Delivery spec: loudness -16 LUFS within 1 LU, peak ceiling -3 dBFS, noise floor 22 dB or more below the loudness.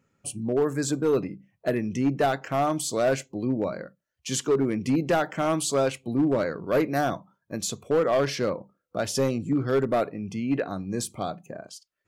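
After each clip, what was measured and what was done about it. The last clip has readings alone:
clipped 1.3%; flat tops at -17.0 dBFS; loudness -26.5 LUFS; peak -17.0 dBFS; loudness target -16.0 LUFS
-> clip repair -17 dBFS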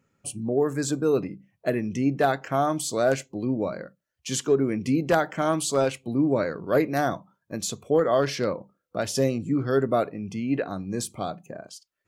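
clipped 0.0%; loudness -26.0 LUFS; peak -8.0 dBFS; loudness target -16.0 LUFS
-> gain +10 dB; limiter -3 dBFS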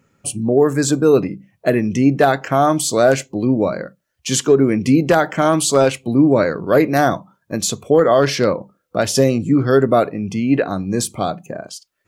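loudness -16.5 LUFS; peak -3.0 dBFS; noise floor -70 dBFS

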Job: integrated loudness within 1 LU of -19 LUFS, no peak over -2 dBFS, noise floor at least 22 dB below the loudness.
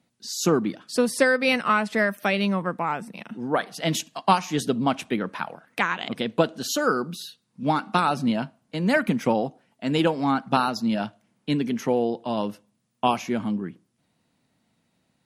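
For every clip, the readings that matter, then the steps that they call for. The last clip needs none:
loudness -25.0 LUFS; peak -5.0 dBFS; loudness target -19.0 LUFS
-> gain +6 dB; limiter -2 dBFS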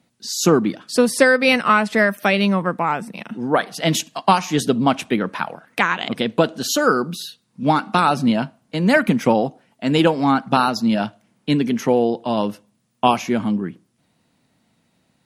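loudness -19.0 LUFS; peak -2.0 dBFS; noise floor -66 dBFS

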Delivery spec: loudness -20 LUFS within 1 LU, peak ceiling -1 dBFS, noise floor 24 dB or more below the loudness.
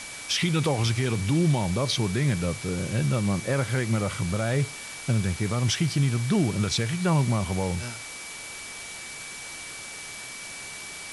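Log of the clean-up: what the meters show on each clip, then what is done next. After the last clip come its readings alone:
steady tone 2300 Hz; tone level -41 dBFS; noise floor -39 dBFS; noise floor target -51 dBFS; loudness -27.0 LUFS; peak -14.0 dBFS; loudness target -20.0 LUFS
-> notch 2300 Hz, Q 30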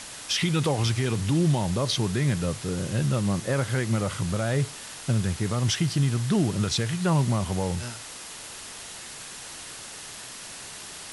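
steady tone none; noise floor -41 dBFS; noise floor target -50 dBFS
-> noise print and reduce 9 dB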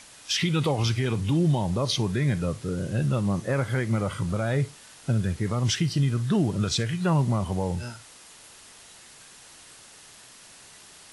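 noise floor -50 dBFS; loudness -26.0 LUFS; peak -15.0 dBFS; loudness target -20.0 LUFS
-> gain +6 dB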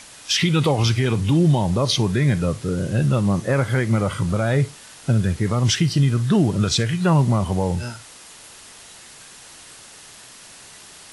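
loudness -20.0 LUFS; peak -9.0 dBFS; noise floor -44 dBFS

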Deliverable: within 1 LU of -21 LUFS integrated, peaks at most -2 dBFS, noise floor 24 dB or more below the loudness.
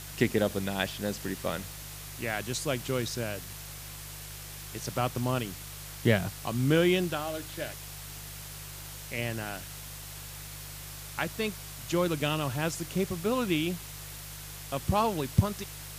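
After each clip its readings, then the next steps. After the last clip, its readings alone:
hum 50 Hz; harmonics up to 150 Hz; hum level -44 dBFS; noise floor -43 dBFS; noise floor target -56 dBFS; loudness -32.0 LUFS; peak -8.5 dBFS; loudness target -21.0 LUFS
-> de-hum 50 Hz, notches 3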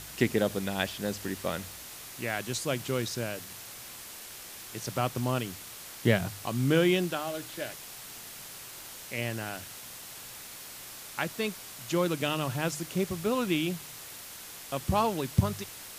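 hum none; noise floor -45 dBFS; noise floor target -56 dBFS
-> denoiser 11 dB, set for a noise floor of -45 dBFS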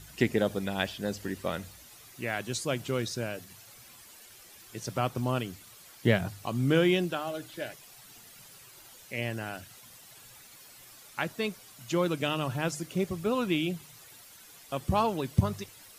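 noise floor -53 dBFS; noise floor target -55 dBFS
-> denoiser 6 dB, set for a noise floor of -53 dBFS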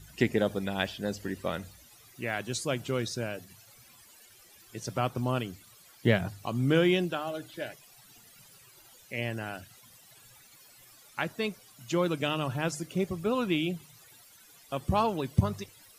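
noise floor -57 dBFS; loudness -31.0 LUFS; peak -9.5 dBFS; loudness target -21.0 LUFS
-> gain +10 dB; limiter -2 dBFS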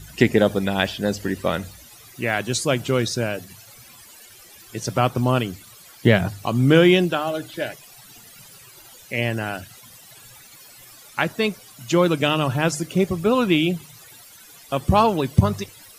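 loudness -21.5 LUFS; peak -2.0 dBFS; noise floor -47 dBFS

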